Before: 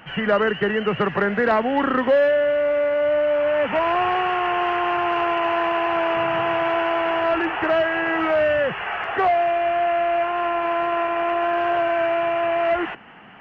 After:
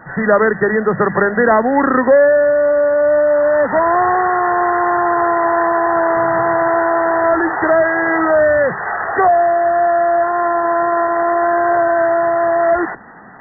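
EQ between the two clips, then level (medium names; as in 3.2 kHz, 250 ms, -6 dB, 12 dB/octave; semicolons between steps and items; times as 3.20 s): brick-wall FIR low-pass 2 kHz; hum notches 50/100/150/200 Hz; +7.0 dB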